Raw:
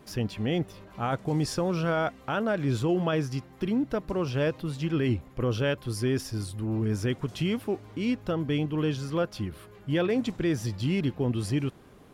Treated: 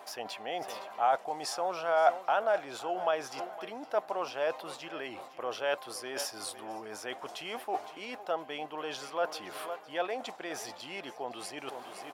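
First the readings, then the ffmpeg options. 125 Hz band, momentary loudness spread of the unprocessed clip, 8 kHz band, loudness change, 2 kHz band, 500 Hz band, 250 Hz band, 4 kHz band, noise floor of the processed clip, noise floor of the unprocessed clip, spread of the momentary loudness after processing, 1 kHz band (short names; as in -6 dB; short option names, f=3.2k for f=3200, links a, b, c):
-31.5 dB, 6 LU, 0.0 dB, -5.5 dB, -2.5 dB, -3.0 dB, -19.0 dB, -2.5 dB, -50 dBFS, -52 dBFS, 12 LU, +4.5 dB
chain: -af "aecho=1:1:512|1024|1536:0.126|0.0491|0.0191,areverse,acompressor=threshold=-36dB:ratio=6,areverse,highpass=f=730:t=q:w=3.8,volume=7dB"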